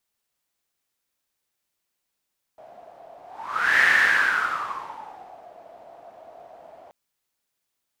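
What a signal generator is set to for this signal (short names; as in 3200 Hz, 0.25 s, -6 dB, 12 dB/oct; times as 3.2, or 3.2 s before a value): whoosh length 4.33 s, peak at 1.25, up 0.66 s, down 1.77 s, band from 680 Hz, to 1800 Hz, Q 9.6, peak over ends 29 dB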